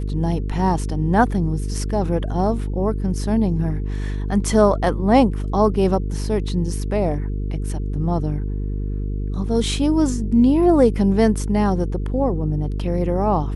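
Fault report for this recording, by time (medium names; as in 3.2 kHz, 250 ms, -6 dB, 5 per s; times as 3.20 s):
buzz 50 Hz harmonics 9 -24 dBFS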